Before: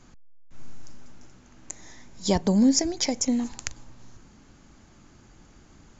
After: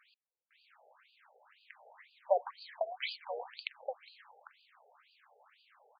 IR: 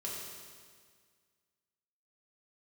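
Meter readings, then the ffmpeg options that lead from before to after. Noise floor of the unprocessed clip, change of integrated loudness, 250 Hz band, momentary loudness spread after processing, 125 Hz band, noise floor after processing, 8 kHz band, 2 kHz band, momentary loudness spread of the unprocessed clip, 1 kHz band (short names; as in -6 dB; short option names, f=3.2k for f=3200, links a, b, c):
-54 dBFS, -14.0 dB, under -40 dB, 24 LU, under -40 dB, under -85 dBFS, n/a, -3.5 dB, 22 LU, -2.0 dB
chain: -af "aecho=1:1:799:0.422,afftfilt=real='re*between(b*sr/1024,590*pow(3500/590,0.5+0.5*sin(2*PI*2*pts/sr))/1.41,590*pow(3500/590,0.5+0.5*sin(2*PI*2*pts/sr))*1.41)':imag='im*between(b*sr/1024,590*pow(3500/590,0.5+0.5*sin(2*PI*2*pts/sr))/1.41,590*pow(3500/590,0.5+0.5*sin(2*PI*2*pts/sr))*1.41)':win_size=1024:overlap=0.75,volume=1dB"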